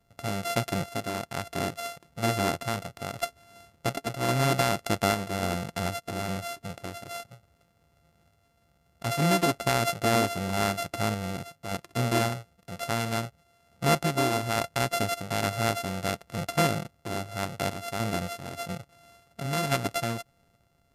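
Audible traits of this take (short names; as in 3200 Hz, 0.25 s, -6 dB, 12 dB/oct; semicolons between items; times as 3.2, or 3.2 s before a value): a buzz of ramps at a fixed pitch in blocks of 64 samples; random-step tremolo; MP2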